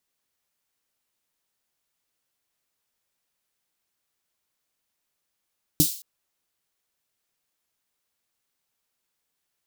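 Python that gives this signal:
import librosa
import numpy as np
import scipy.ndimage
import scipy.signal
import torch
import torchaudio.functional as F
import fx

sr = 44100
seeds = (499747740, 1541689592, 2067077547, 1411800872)

y = fx.drum_snare(sr, seeds[0], length_s=0.22, hz=160.0, second_hz=300.0, noise_db=-2, noise_from_hz=3800.0, decay_s=0.11, noise_decay_s=0.44)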